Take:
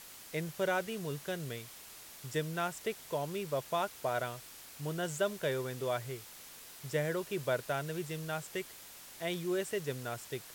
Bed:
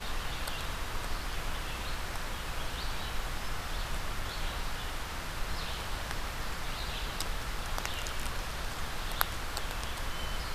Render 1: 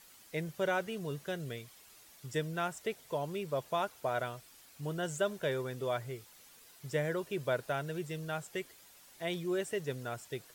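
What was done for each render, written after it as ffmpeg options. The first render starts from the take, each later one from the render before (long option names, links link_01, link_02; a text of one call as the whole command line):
ffmpeg -i in.wav -af "afftdn=noise_reduction=9:noise_floor=-52" out.wav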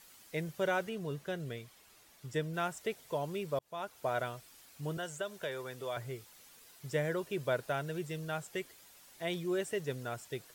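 ffmpeg -i in.wav -filter_complex "[0:a]asettb=1/sr,asplit=3[link_01][link_02][link_03];[link_01]atrim=end=0.894[link_04];[link_02]atrim=start=0.89:end=2.54,asetpts=PTS-STARTPTS,afade=type=in:duration=0.004:curve=qsin,afade=type=out:start_time=1.646:duration=0.004:curve=qsin,highshelf=frequency=3900:gain=-5.5[link_05];[link_03]atrim=start=2.536[link_06];[link_04][link_05]acrossfade=duration=0.004:curve1=hsin:curve2=qsin[link_07];[link_07][link_06]acrossfade=duration=0.004:curve1=qsin:curve2=hsin,asettb=1/sr,asplit=3[link_08][link_09][link_10];[link_08]atrim=end=4.974[link_11];[link_09]atrim=start=4.97:end=5.97,asetpts=PTS-STARTPTS,afade=type=in:duration=0.004:curve=qsin,afade=type=out:start_time=0.996:duration=0.004:curve=qsin,acrossover=split=480|2500[link_12][link_13][link_14];[link_12]acompressor=threshold=-49dB:ratio=4[link_15];[link_13]acompressor=threshold=-37dB:ratio=4[link_16];[link_14]acompressor=threshold=-46dB:ratio=4[link_17];[link_15][link_16][link_17]amix=inputs=3:normalize=0[link_18];[link_10]atrim=start=5.966[link_19];[link_11][link_18]acrossfade=duration=0.004:curve1=hsin:curve2=qsin[link_20];[link_20][link_19]acrossfade=duration=0.004:curve1=qsin:curve2=hsin,asplit=2[link_21][link_22];[link_21]atrim=end=3.59,asetpts=PTS-STARTPTS,afade=type=out:start_time=3.586:duration=0.004:curve=hsin[link_23];[link_22]atrim=start=3.59,asetpts=PTS-STARTPTS,afade=type=in:duration=0.48[link_24];[link_23][link_24]concat=n=2:v=0:a=1" out.wav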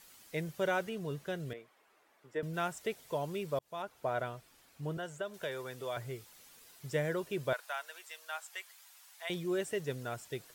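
ffmpeg -i in.wav -filter_complex "[0:a]asettb=1/sr,asplit=3[link_01][link_02][link_03];[link_01]atrim=end=1.534[link_04];[link_02]atrim=start=1.53:end=2.43,asetpts=PTS-STARTPTS,afade=type=in:duration=0.004:curve=qsin,afade=type=out:start_time=0.896:duration=0.004:curve=qsin,acrossover=split=280 2200:gain=0.0794 1 0.158[link_05][link_06][link_07];[link_05][link_06][link_07]amix=inputs=3:normalize=0[link_08];[link_03]atrim=start=2.426[link_09];[link_04][link_08]acrossfade=duration=0.004:curve1=hsin:curve2=qsin[link_10];[link_10][link_09]acrossfade=duration=0.004:curve1=qsin:curve2=hsin,asettb=1/sr,asplit=3[link_11][link_12][link_13];[link_11]atrim=end=3.824[link_14];[link_12]atrim=start=3.82:end=5.34,asetpts=PTS-STARTPTS,afade=type=in:duration=0.004:curve=qsin,afade=type=out:start_time=1.516:duration=0.004:curve=qsin,highshelf=frequency=3100:gain=-8.5[link_15];[link_13]atrim=start=5.336[link_16];[link_14][link_15]acrossfade=duration=0.004:curve1=hsin:curve2=qsin[link_17];[link_17][link_16]acrossfade=duration=0.004:curve1=qsin:curve2=hsin,asettb=1/sr,asplit=3[link_18][link_19][link_20];[link_18]atrim=end=7.534[link_21];[link_19]atrim=start=7.53:end=9.3,asetpts=PTS-STARTPTS,afade=type=in:duration=0.004:curve=qsin,afade=type=out:start_time=1.766:duration=0.004:curve=qsin,highpass=frequency=800:width=0.5412,highpass=frequency=800:width=1.3066[link_22];[link_20]atrim=start=9.296[link_23];[link_21][link_22]acrossfade=duration=0.004:curve1=hsin:curve2=qsin[link_24];[link_24][link_23]acrossfade=duration=0.004:curve1=qsin:curve2=hsin" out.wav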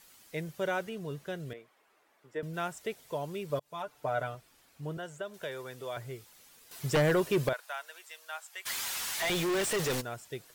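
ffmpeg -i in.wav -filter_complex "[0:a]asettb=1/sr,asplit=3[link_01][link_02][link_03];[link_01]atrim=end=3.494[link_04];[link_02]atrim=start=3.49:end=4.35,asetpts=PTS-STARTPTS,afade=type=in:duration=0.004:curve=qsin,afade=type=out:start_time=0.856:duration=0.004:curve=qsin,aecho=1:1:6.8:0.65,atrim=end_sample=37926[link_05];[link_03]atrim=start=4.346[link_06];[link_04][link_05]acrossfade=duration=0.004:curve1=hsin:curve2=qsin[link_07];[link_07][link_06]acrossfade=duration=0.004:curve1=qsin:curve2=hsin,asettb=1/sr,asplit=3[link_08][link_09][link_10];[link_08]atrim=end=6.714[link_11];[link_09]atrim=start=6.71:end=7.49,asetpts=PTS-STARTPTS,afade=type=in:duration=0.004:curve=qsin,afade=type=out:start_time=0.776:duration=0.004:curve=qsin,aeval=exprs='0.0891*sin(PI/2*2.24*val(0)/0.0891)':channel_layout=same[link_12];[link_10]atrim=start=7.486[link_13];[link_11][link_12]acrossfade=duration=0.004:curve1=hsin:curve2=qsin[link_14];[link_14][link_13]acrossfade=duration=0.004:curve1=qsin:curve2=hsin,asplit=3[link_15][link_16][link_17];[link_15]afade=type=out:start_time=8.65:duration=0.02[link_18];[link_16]asplit=2[link_19][link_20];[link_20]highpass=frequency=720:poles=1,volume=37dB,asoftclip=type=tanh:threshold=-24dB[link_21];[link_19][link_21]amix=inputs=2:normalize=0,lowpass=frequency=7400:poles=1,volume=-6dB,afade=type=in:start_time=8.65:duration=0.02,afade=type=out:start_time=10:duration=0.02[link_22];[link_17]afade=type=in:start_time=10:duration=0.02[link_23];[link_18][link_22][link_23]amix=inputs=3:normalize=0" out.wav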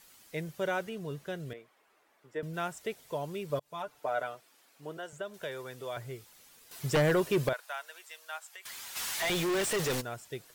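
ffmpeg -i in.wav -filter_complex "[0:a]asettb=1/sr,asplit=3[link_01][link_02][link_03];[link_01]atrim=end=3.994[link_04];[link_02]atrim=start=3.99:end=5.13,asetpts=PTS-STARTPTS,afade=type=in:duration=0.004:curve=qsin,afade=type=out:start_time=1.136:duration=0.004:curve=qsin,highpass=300[link_05];[link_03]atrim=start=5.126[link_06];[link_04][link_05]acrossfade=duration=0.004:curve1=hsin:curve2=qsin[link_07];[link_07][link_06]acrossfade=duration=0.004:curve1=qsin:curve2=hsin,asplit=3[link_08][link_09][link_10];[link_08]afade=type=out:start_time=8.38:duration=0.02[link_11];[link_09]acompressor=threshold=-43dB:ratio=5:attack=3.2:release=140:knee=1:detection=peak,afade=type=in:start_time=8.38:duration=0.02,afade=type=out:start_time=8.95:duration=0.02[link_12];[link_10]afade=type=in:start_time=8.95:duration=0.02[link_13];[link_11][link_12][link_13]amix=inputs=3:normalize=0" out.wav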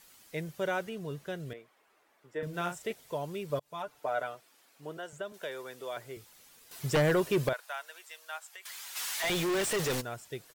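ffmpeg -i in.wav -filter_complex "[0:a]asplit=3[link_01][link_02][link_03];[link_01]afade=type=out:start_time=2.39:duration=0.02[link_04];[link_02]asplit=2[link_05][link_06];[link_06]adelay=40,volume=-5dB[link_07];[link_05][link_07]amix=inputs=2:normalize=0,afade=type=in:start_time=2.39:duration=0.02,afade=type=out:start_time=2.91:duration=0.02[link_08];[link_03]afade=type=in:start_time=2.91:duration=0.02[link_09];[link_04][link_08][link_09]amix=inputs=3:normalize=0,asettb=1/sr,asplit=3[link_10][link_11][link_12];[link_10]atrim=end=5.324[link_13];[link_11]atrim=start=5.32:end=6.17,asetpts=PTS-STARTPTS,afade=type=in:duration=0.004:curve=qsin,afade=type=out:start_time=0.846:duration=0.004:curve=qsin,highpass=230[link_14];[link_12]atrim=start=6.166[link_15];[link_13][link_14]acrossfade=duration=0.004:curve1=hsin:curve2=qsin[link_16];[link_16][link_15]acrossfade=duration=0.004:curve1=qsin:curve2=hsin,asettb=1/sr,asplit=3[link_17][link_18][link_19];[link_17]atrim=end=8.644[link_20];[link_18]atrim=start=8.64:end=9.24,asetpts=PTS-STARTPTS,afade=type=in:duration=0.004:curve=qsin,afade=type=out:start_time=0.596:duration=0.004:curve=qsin,highpass=frequency=760:poles=1[link_21];[link_19]atrim=start=9.236[link_22];[link_20][link_21]acrossfade=duration=0.004:curve1=hsin:curve2=qsin[link_23];[link_23][link_22]acrossfade=duration=0.004:curve1=qsin:curve2=hsin" out.wav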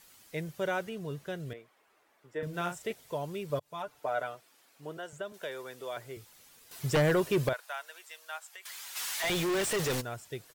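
ffmpeg -i in.wav -af "equalizer=frequency=100:width_type=o:width=0.68:gain=4" out.wav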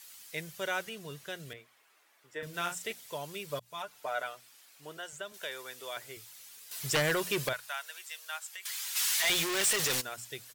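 ffmpeg -i in.wav -af "tiltshelf=frequency=1200:gain=-7.5,bandreject=frequency=60:width_type=h:width=6,bandreject=frequency=120:width_type=h:width=6,bandreject=frequency=180:width_type=h:width=6,bandreject=frequency=240:width_type=h:width=6" out.wav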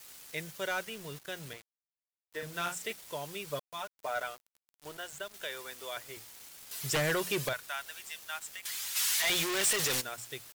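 ffmpeg -i in.wav -af "acrusher=bits=7:mix=0:aa=0.000001,asoftclip=type=hard:threshold=-24.5dB" out.wav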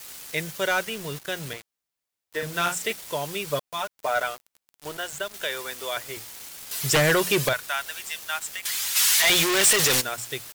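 ffmpeg -i in.wav -af "volume=10dB" out.wav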